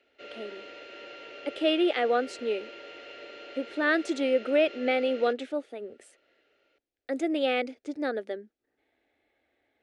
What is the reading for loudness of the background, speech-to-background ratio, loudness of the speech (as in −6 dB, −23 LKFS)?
−44.5 LKFS, 16.5 dB, −28.0 LKFS